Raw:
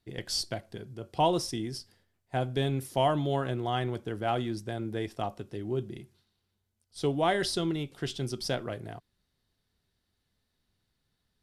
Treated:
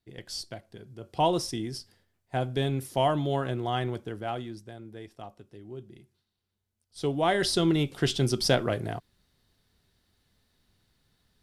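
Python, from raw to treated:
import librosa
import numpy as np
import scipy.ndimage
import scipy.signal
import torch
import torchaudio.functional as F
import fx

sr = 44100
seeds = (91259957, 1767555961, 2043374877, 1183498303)

y = fx.gain(x, sr, db=fx.line((0.72, -5.5), (1.25, 1.0), (3.9, 1.0), (4.82, -10.0), (5.8, -10.0), (7.29, 1.5), (7.81, 8.0)))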